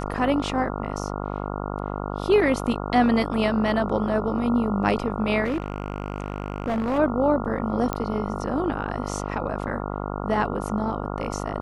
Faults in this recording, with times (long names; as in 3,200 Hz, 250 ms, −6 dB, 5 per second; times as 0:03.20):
mains buzz 50 Hz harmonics 28 −30 dBFS
0:05.44–0:06.99: clipping −21 dBFS
0:07.93: click −12 dBFS